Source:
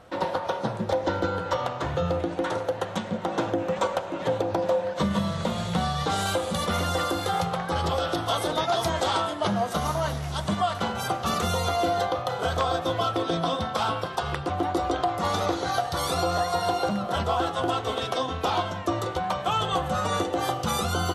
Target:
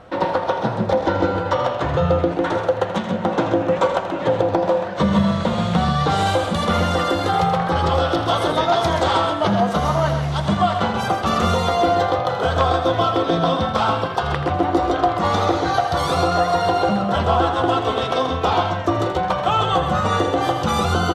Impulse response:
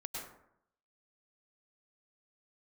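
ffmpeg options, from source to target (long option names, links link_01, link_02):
-af "aemphasis=mode=reproduction:type=50fm,acontrast=76,aecho=1:1:81.63|131.2:0.282|0.398"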